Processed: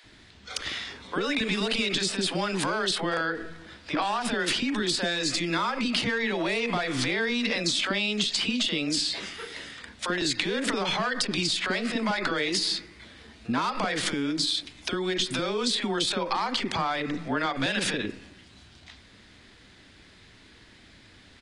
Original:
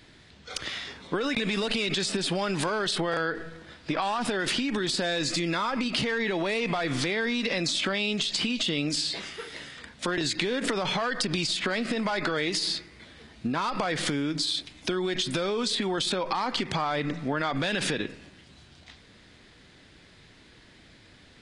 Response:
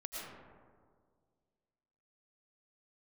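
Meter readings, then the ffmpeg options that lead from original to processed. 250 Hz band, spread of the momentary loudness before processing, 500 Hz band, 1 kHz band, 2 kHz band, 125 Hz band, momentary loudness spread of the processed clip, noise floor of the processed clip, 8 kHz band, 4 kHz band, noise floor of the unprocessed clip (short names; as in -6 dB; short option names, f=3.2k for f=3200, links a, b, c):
+0.5 dB, 7 LU, -1.0 dB, +1.0 dB, +1.5 dB, -2.0 dB, 8 LU, -54 dBFS, +1.5 dB, +1.5 dB, -55 dBFS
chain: -filter_complex "[0:a]equalizer=f=150:w=5.9:g=-8.5,acrossover=split=520[a][b];[a]adelay=40[c];[c][b]amix=inputs=2:normalize=0,volume=1.5dB"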